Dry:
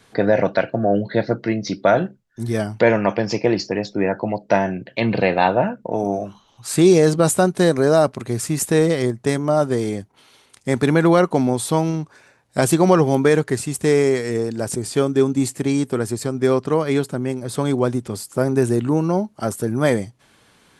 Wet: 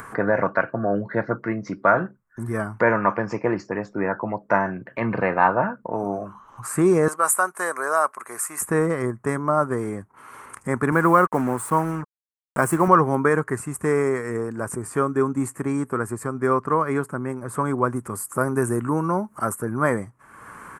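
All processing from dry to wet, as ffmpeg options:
-filter_complex "[0:a]asettb=1/sr,asplit=3[a][b][c];[a]atrim=end=7.084[d];[b]atrim=start=7.08:end=8.61,asetpts=PTS-STARTPTS,afade=t=in:d=0.004:c=qsin,afade=t=out:st=1.526:d=0.004:c=qsin,highpass=720,highshelf=f=7k:g=11.5[e];[c]atrim=start=8.606[f];[d][e]acrossfade=d=0.004:c1=hsin:c2=qsin[g];[g][f]acrossfade=d=0.004:c1=qsin:c2=hsin,asettb=1/sr,asplit=3[h][i][j];[h]atrim=end=10.924[k];[i]atrim=start=10.92:end=12.88,asetpts=PTS-STARTPTS,afade=t=in:d=0.004:c=qsin,afade=t=out:st=1.956:d=0.004:c=qsin,highpass=97,acrusher=bits=4:mix=0:aa=0.5[l];[j]atrim=start=12.876[m];[k][l]acrossfade=d=0.004:c1=hsin:c2=qsin[n];[n][m]acrossfade=d=0.004:c1=qsin:c2=hsin,asettb=1/sr,asplit=3[o][p][q];[o]atrim=end=17.964[r];[p]atrim=start=17.96:end=19.55,asetpts=PTS-STARTPTS,afade=t=in:d=0.004:c=qsin,afade=t=out:st=1.586:d=0.004:c=qsin,highshelf=f=6.5k:g=11,acompressor=mode=upward:threshold=-28dB:ratio=2.5:attack=3.2:release=140:knee=2.83:detection=peak[s];[q]atrim=start=19.546[t];[r][s]acrossfade=d=0.004:c1=hsin:c2=qsin[u];[u][t]acrossfade=d=0.004:c1=qsin:c2=hsin,firequalizer=gain_entry='entry(740,0);entry(1100,14);entry(3600,-21);entry(8200,0)':delay=0.05:min_phase=1,acompressor=mode=upward:threshold=-22dB:ratio=2.5,volume=-5dB"

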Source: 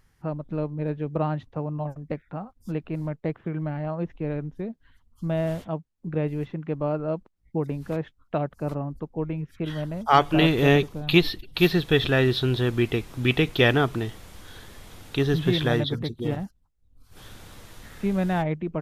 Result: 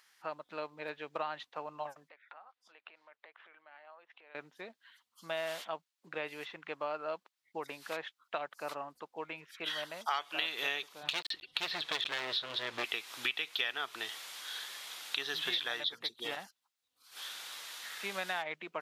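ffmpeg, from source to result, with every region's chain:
-filter_complex "[0:a]asettb=1/sr,asplit=3[a][b][c];[a]atrim=end=2.094[d];[b]atrim=start=2.09:end=4.35,asetpts=PTS-STARTPTS,afade=t=in:d=0.004:c=qsin,afade=t=out:st=2.256:d=0.004:c=qsin,acompressor=threshold=-42dB:ratio=8:attack=3.2:release=140:knee=1:detection=peak,highpass=530,lowpass=3.4k[e];[c]atrim=start=4.346[f];[d][e]acrossfade=d=0.004:c1=hsin:c2=qsin[g];[g][f]acrossfade=d=0.004:c1=qsin:c2=hsin,asettb=1/sr,asplit=3[h][i][j];[h]atrim=end=11.034[k];[i]atrim=start=11.03:end=12.84,asetpts=PTS-STARTPTS,afade=t=in:d=0.004:c=qsin,afade=t=out:st=1.806:d=0.004:c=qsin,aemphasis=mode=reproduction:type=bsi,asoftclip=type=hard:threshold=-18dB[l];[j]atrim=start=12.836[m];[k][l]acrossfade=d=0.004:c1=hsin:c2=qsin[n];[n][m]acrossfade=d=0.004:c1=qsin:c2=hsin,highpass=1.1k,equalizer=f=3.9k:w=1.1:g=5.5,acompressor=threshold=-35dB:ratio=6,volume=3dB"

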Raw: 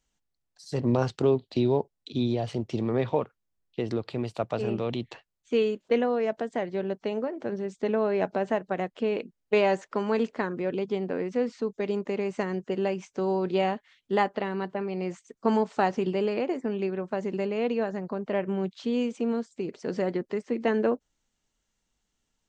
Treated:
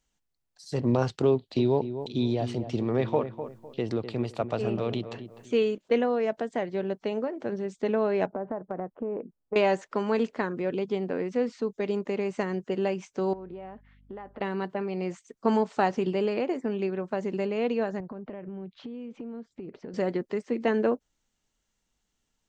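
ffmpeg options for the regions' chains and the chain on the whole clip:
-filter_complex "[0:a]asettb=1/sr,asplit=3[a][b][c];[a]atrim=end=1.334[d];[b]atrim=start=1.33:end=5.78,asetpts=PTS-STARTPTS,afade=t=in:d=0.004:c=qsin,afade=t=out:st=4.446:d=0.004:c=qsin,acompressor=mode=upward:threshold=-46dB:ratio=2.5:attack=3.2:release=140:knee=2.83:detection=peak,asplit=2[e][f];[f]adelay=252,lowpass=f=1.5k:p=1,volume=-10dB,asplit=2[g][h];[h]adelay=252,lowpass=f=1.5k:p=1,volume=0.31,asplit=2[i][j];[j]adelay=252,lowpass=f=1.5k:p=1,volume=0.31[k];[e][g][i][k]amix=inputs=4:normalize=0,atrim=end_sample=196245[l];[c]atrim=start=5.776[m];[d][l]acrossfade=d=0.004:c1=hsin:c2=qsin[n];[n][m]acrossfade=d=0.004:c1=qsin:c2=hsin,asettb=1/sr,asplit=3[o][p][q];[o]atrim=end=8.264[r];[p]atrim=start=8.26:end=9.56,asetpts=PTS-STARTPTS,afade=t=in:d=0.004:c=qsin,afade=t=out:st=1.296:d=0.004:c=qsin,lowpass=f=1.3k:w=0.5412,lowpass=f=1.3k:w=1.3066,acompressor=threshold=-28dB:ratio=4:attack=3.2:release=140:knee=1:detection=peak[s];[q]atrim=start=9.556[t];[r][s]acrossfade=d=0.004:c1=hsin:c2=qsin[u];[u][t]acrossfade=d=0.004:c1=qsin:c2=hsin,asettb=1/sr,asplit=3[v][w][x];[v]atrim=end=13.334[y];[w]atrim=start=13.33:end=14.41,asetpts=PTS-STARTPTS,afade=t=in:d=0.004:c=qsin,afade=t=out:st=1.076:d=0.004:c=qsin,lowpass=1.7k,acompressor=threshold=-37dB:ratio=12:attack=3.2:release=140:knee=1:detection=peak,aeval=exprs='val(0)+0.00141*(sin(2*PI*50*n/s)+sin(2*PI*2*50*n/s)/2+sin(2*PI*3*50*n/s)/3+sin(2*PI*4*50*n/s)/4+sin(2*PI*5*50*n/s)/5)':c=same[z];[x]atrim=start=14.406[aa];[y][z]acrossfade=d=0.004:c1=hsin:c2=qsin[ab];[ab][aa]acrossfade=d=0.004:c1=qsin:c2=hsin,asettb=1/sr,asplit=3[ac][ad][ae];[ac]atrim=end=18.004[af];[ad]atrim=start=18:end=19.94,asetpts=PTS-STARTPTS,afade=t=in:d=0.004:c=qsin,afade=t=out:st=1.936:d=0.004:c=qsin,lowpass=2.7k,lowshelf=f=360:g=7.5,acompressor=threshold=-35dB:ratio=16:attack=3.2:release=140:knee=1:detection=peak[ag];[ae]atrim=start=19.936[ah];[af][ag]acrossfade=d=0.004:c1=hsin:c2=qsin[ai];[ai][ah]acrossfade=d=0.004:c1=qsin:c2=hsin"

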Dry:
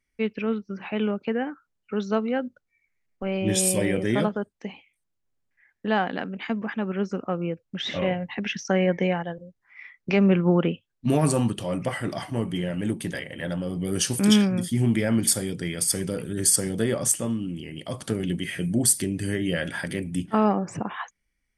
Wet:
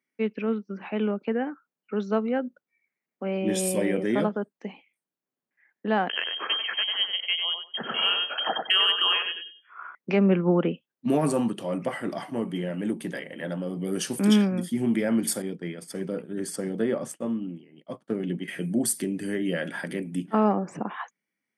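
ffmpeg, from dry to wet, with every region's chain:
-filter_complex "[0:a]asettb=1/sr,asplit=3[a][b][c];[a]atrim=end=6.094[d];[b]atrim=start=6.09:end=9.95,asetpts=PTS-STARTPTS,afade=t=in:d=0.004:c=qsin,afade=t=out:st=3.856:d=0.004:c=qsin,lowpass=f=2.9k:t=q:w=0.5098,lowpass=f=2.9k:t=q:w=0.6013,lowpass=f=2.9k:t=q:w=0.9,lowpass=f=2.9k:t=q:w=2.563,afreqshift=-3400,acontrast=27,asplit=2[e][f];[f]adelay=95,lowpass=f=1.6k:p=1,volume=-3dB,asplit=2[g][h];[h]adelay=95,lowpass=f=1.6k:p=1,volume=0.24,asplit=2[i][j];[j]adelay=95,lowpass=f=1.6k:p=1,volume=0.24[k];[e][g][i][k]amix=inputs=4:normalize=0,atrim=end_sample=170226[l];[c]atrim=start=9.946[m];[d][l]acrossfade=d=0.004:c1=hsin:c2=qsin[n];[n][m]acrossfade=d=0.004:c1=qsin:c2=hsin,asettb=1/sr,asplit=3[o][p][q];[o]atrim=end=15.424[r];[p]atrim=start=15.42:end=18.48,asetpts=PTS-STARTPTS,afade=t=in:d=0.004:c=qsin,afade=t=out:st=3.056:d=0.004:c=qsin,lowpass=f=2.7k:p=1,agate=range=-33dB:threshold=-29dB:ratio=3:release=100:detection=peak[s];[q]atrim=start=18.476[t];[r][s]acrossfade=d=0.004:c1=hsin:c2=qsin[u];[u][t]acrossfade=d=0.004:c1=qsin:c2=hsin,highpass=f=180:w=0.5412,highpass=f=180:w=1.3066,equalizer=f=6.3k:w=0.4:g=-8"

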